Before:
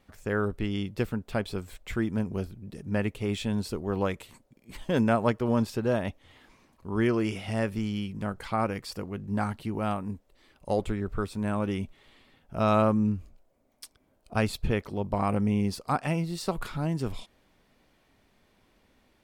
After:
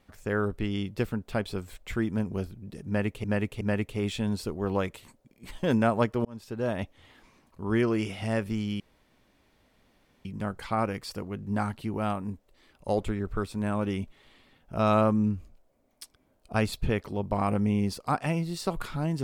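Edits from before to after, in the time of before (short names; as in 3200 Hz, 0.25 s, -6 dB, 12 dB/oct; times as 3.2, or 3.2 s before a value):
2.87–3.24 loop, 3 plays
5.51–6.09 fade in
8.06 insert room tone 1.45 s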